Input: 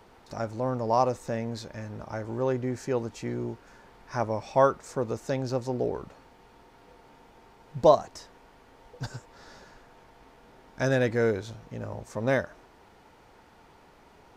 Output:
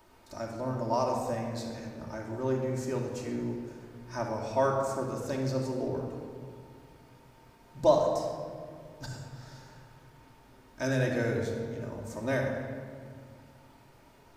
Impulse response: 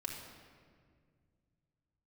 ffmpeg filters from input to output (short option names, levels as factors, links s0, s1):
-filter_complex "[0:a]highshelf=f=7200:g=12[s0];[1:a]atrim=start_sample=2205[s1];[s0][s1]afir=irnorm=-1:irlink=0,volume=0.668"